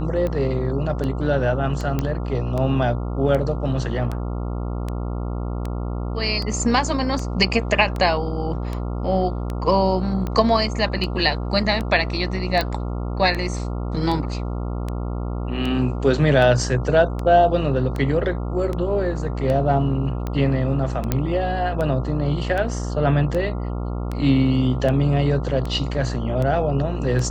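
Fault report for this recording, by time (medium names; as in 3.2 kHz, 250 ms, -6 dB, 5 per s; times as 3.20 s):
buzz 60 Hz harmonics 23 -26 dBFS
tick 78 rpm -15 dBFS
1.99 s: pop -10 dBFS
12.61 s: pop -9 dBFS
21.12 s: pop -6 dBFS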